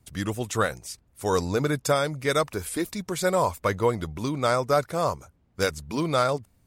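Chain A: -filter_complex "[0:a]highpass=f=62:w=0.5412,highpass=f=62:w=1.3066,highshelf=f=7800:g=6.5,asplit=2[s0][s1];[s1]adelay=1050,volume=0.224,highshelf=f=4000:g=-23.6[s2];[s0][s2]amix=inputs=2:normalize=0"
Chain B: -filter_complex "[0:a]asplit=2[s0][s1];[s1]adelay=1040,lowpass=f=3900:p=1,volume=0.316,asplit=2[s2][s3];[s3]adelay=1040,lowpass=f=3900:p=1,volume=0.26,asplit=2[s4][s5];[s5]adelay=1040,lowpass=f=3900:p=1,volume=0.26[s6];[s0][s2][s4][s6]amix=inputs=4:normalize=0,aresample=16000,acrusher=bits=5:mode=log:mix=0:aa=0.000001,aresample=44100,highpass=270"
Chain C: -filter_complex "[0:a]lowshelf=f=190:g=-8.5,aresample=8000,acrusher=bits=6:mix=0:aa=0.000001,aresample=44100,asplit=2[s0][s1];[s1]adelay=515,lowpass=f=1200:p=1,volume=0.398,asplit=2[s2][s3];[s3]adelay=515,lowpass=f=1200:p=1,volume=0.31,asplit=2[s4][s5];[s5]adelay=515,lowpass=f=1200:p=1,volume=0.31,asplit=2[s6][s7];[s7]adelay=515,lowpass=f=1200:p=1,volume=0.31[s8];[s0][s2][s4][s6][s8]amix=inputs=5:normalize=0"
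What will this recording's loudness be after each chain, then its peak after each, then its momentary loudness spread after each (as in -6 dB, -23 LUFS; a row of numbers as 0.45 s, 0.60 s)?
-26.0 LUFS, -27.0 LUFS, -27.5 LUFS; -8.0 dBFS, -8.0 dBFS, -10.0 dBFS; 7 LU, 9 LU, 8 LU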